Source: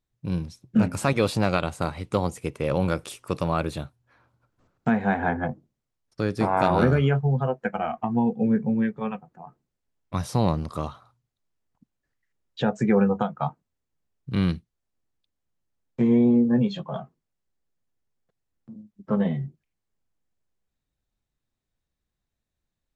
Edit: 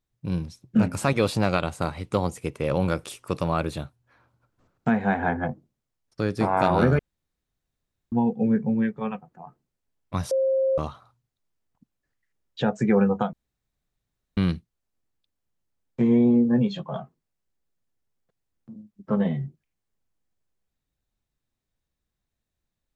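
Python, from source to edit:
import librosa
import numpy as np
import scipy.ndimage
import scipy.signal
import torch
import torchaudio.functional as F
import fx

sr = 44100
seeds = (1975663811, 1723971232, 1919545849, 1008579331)

y = fx.edit(x, sr, fx.room_tone_fill(start_s=6.99, length_s=1.13),
    fx.bleep(start_s=10.31, length_s=0.47, hz=532.0, db=-19.0),
    fx.room_tone_fill(start_s=13.33, length_s=1.04), tone=tone)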